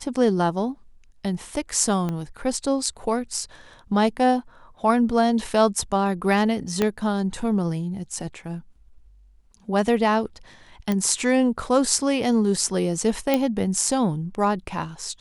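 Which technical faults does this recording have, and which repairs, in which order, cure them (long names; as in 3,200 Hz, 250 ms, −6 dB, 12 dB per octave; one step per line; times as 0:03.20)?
0:02.09: click −16 dBFS
0:06.82: click −8 dBFS
0:10.92: click −12 dBFS
0:13.34: click −7 dBFS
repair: click removal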